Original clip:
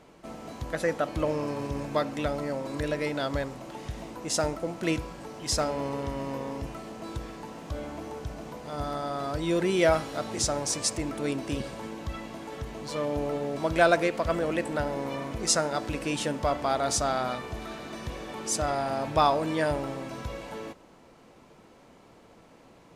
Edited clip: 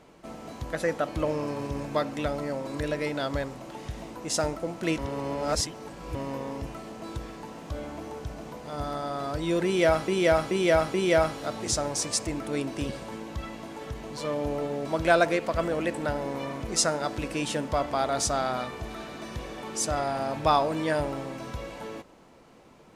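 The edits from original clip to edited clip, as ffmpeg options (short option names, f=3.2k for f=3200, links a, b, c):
-filter_complex "[0:a]asplit=6[a][b][c][d][e][f];[a]atrim=end=4.982[g];[b]atrim=start=4.978:end=6.152,asetpts=PTS-STARTPTS,areverse[h];[c]atrim=start=6.148:end=10.082[i];[d]atrim=start=9.648:end=10.082[j];[e]atrim=start=9.648:end=10.082[k];[f]atrim=start=9.648[l];[g][h]acrossfade=d=0.004:c1=hsin:c2=hsin[m];[m][i]acrossfade=d=0.004:c1=hsin:c2=hsin[n];[n][j]acrossfade=d=0.004:c1=hsin:c2=hsin[o];[o][k]acrossfade=d=0.004:c1=hsin:c2=hsin[p];[p][l]acrossfade=d=0.004:c1=hsin:c2=hsin"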